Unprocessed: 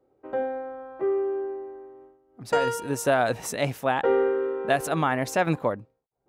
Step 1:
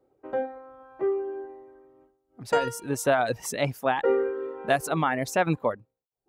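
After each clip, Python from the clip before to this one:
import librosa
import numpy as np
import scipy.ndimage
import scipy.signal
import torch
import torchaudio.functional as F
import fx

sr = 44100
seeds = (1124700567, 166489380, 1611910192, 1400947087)

y = fx.dereverb_blind(x, sr, rt60_s=0.76)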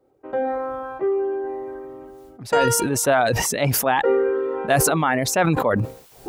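y = fx.sustainer(x, sr, db_per_s=21.0)
y = F.gain(torch.from_numpy(y), 3.5).numpy()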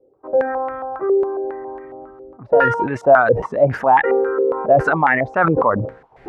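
y = fx.filter_held_lowpass(x, sr, hz=7.3, low_hz=490.0, high_hz=2000.0)
y = F.gain(torch.from_numpy(y), -1.0).numpy()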